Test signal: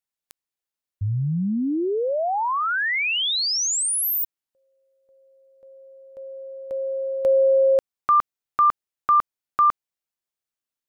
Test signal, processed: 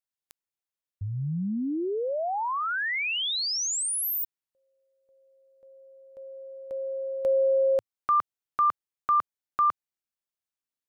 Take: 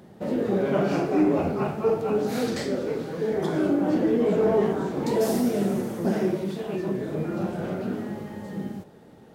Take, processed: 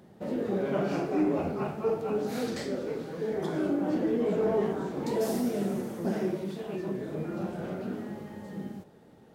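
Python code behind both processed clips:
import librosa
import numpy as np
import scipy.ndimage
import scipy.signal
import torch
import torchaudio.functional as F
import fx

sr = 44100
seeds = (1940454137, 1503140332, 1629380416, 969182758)

y = fx.dynamic_eq(x, sr, hz=110.0, q=3.4, threshold_db=-46.0, ratio=5.0, max_db=-3)
y = y * librosa.db_to_amplitude(-5.5)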